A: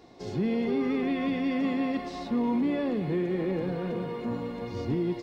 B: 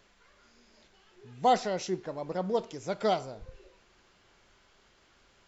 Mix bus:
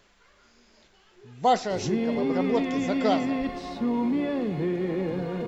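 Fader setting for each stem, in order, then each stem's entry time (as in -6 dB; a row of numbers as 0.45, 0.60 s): +1.0, +2.5 dB; 1.50, 0.00 s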